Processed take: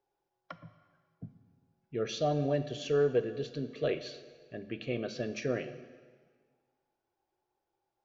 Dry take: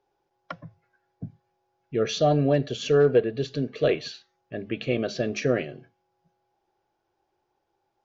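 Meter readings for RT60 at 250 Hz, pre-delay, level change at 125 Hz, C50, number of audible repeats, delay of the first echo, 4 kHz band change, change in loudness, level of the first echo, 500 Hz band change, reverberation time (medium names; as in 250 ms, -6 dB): 1.6 s, 14 ms, -9.0 dB, 13.0 dB, no echo, no echo, -8.5 dB, -8.5 dB, no echo, -8.5 dB, 1.6 s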